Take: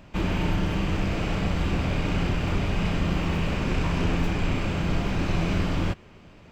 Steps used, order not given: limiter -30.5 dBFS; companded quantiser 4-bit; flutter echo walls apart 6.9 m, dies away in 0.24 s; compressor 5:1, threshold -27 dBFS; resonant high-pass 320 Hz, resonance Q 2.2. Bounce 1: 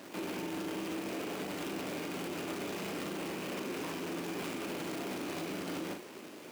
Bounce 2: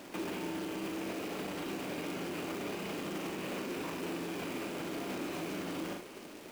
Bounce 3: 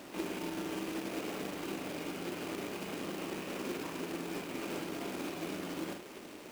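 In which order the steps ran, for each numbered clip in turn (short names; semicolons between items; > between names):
companded quantiser > resonant high-pass > compressor > flutter echo > limiter; resonant high-pass > companded quantiser > flutter echo > limiter > compressor; flutter echo > compressor > limiter > resonant high-pass > companded quantiser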